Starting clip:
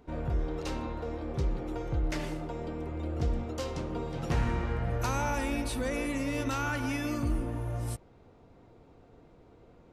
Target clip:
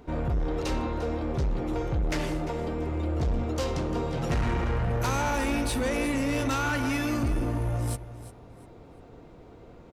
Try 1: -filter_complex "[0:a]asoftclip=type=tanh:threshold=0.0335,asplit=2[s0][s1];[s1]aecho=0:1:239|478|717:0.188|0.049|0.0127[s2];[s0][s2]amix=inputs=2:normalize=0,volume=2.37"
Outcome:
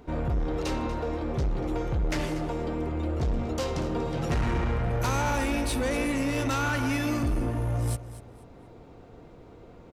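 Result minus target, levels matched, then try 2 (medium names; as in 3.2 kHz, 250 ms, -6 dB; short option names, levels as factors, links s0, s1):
echo 109 ms early
-filter_complex "[0:a]asoftclip=type=tanh:threshold=0.0335,asplit=2[s0][s1];[s1]aecho=0:1:348|696|1044:0.188|0.049|0.0127[s2];[s0][s2]amix=inputs=2:normalize=0,volume=2.37"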